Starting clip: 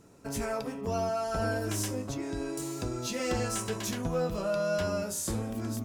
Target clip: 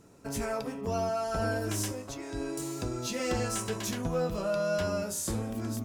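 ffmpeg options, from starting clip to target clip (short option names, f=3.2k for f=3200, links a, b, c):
-filter_complex "[0:a]asettb=1/sr,asplit=3[a][b][c];[a]atrim=end=1.924[d];[b]atrim=start=1.92:end=2.34,asetpts=PTS-STARTPTS,afade=t=in:d=0.004:c=qsin,afade=t=out:st=0.416:d=0.004:c=qsin,equalizer=f=160:w=0.6:g=-10[e];[c]atrim=start=2.336[f];[d][e]acrossfade=d=0.004:c1=hsin:c2=qsin[g];[g][f]acrossfade=d=0.004:c1=qsin:c2=hsin"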